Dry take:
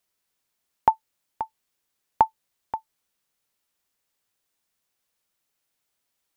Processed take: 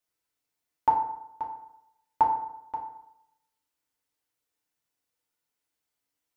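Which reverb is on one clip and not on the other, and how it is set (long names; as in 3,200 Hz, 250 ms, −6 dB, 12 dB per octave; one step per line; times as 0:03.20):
feedback delay network reverb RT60 0.8 s, low-frequency decay 0.95×, high-frequency decay 0.55×, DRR −3 dB
level −10 dB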